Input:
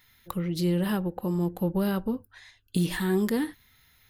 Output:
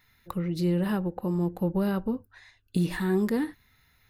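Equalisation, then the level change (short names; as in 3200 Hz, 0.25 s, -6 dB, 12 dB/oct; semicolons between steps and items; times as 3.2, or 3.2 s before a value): high shelf 3900 Hz -8 dB; notch 3200 Hz, Q 8.4; 0.0 dB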